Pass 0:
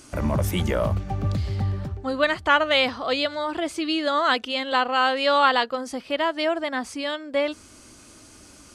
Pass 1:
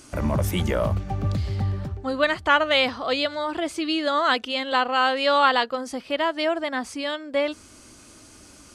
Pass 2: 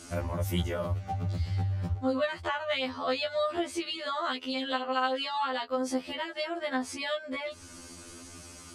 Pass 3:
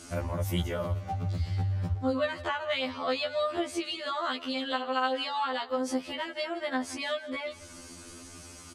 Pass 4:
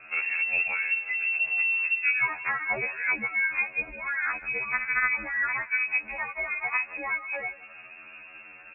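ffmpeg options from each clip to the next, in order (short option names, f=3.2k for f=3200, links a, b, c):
-af anull
-af "acompressor=threshold=-30dB:ratio=6,afftfilt=real='re*2*eq(mod(b,4),0)':imag='im*2*eq(mod(b,4),0)':win_size=2048:overlap=0.75,volume=3.5dB"
-af "aecho=1:1:166|332|498:0.126|0.0491|0.0191"
-af "lowpass=f=2.4k:t=q:w=0.5098,lowpass=f=2.4k:t=q:w=0.6013,lowpass=f=2.4k:t=q:w=0.9,lowpass=f=2.4k:t=q:w=2.563,afreqshift=-2800,volume=3dB"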